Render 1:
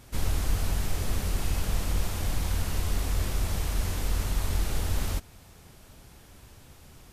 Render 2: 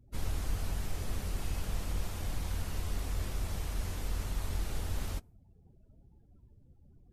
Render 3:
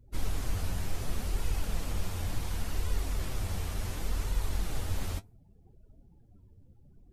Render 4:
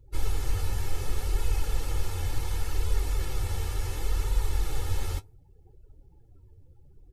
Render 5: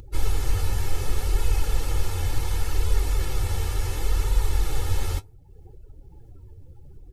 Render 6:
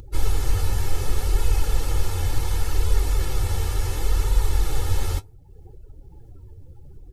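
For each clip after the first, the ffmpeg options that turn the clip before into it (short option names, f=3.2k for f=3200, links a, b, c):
-af "afftdn=nr=31:nf=-49,volume=-7dB"
-af "flanger=delay=2:depth=9.1:regen=46:speed=0.69:shape=sinusoidal,volume=6.5dB"
-af "aecho=1:1:2.3:0.82"
-af "acompressor=mode=upward:threshold=-41dB:ratio=2.5,volume=4.5dB"
-af "equalizer=f=2.4k:t=o:w=0.77:g=-2,volume=2dB"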